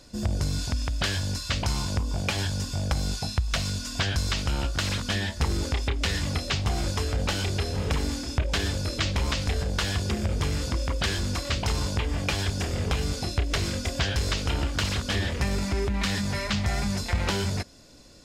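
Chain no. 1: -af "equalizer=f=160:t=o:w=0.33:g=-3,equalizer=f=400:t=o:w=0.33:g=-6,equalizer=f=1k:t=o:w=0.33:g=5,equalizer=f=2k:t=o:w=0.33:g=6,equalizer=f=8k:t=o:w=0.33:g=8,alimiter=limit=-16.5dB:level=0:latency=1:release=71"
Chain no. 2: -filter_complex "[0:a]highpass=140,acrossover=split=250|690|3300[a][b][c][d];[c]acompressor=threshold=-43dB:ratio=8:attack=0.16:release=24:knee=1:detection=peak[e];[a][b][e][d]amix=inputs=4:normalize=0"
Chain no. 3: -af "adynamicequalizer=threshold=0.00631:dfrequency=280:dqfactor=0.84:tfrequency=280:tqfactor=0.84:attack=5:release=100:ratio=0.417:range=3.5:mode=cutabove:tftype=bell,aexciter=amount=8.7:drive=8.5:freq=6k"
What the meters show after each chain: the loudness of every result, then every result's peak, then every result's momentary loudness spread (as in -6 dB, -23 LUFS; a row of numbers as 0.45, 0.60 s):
-28.0, -32.0, -19.5 LUFS; -16.5, -16.0, -3.0 dBFS; 3, 2, 4 LU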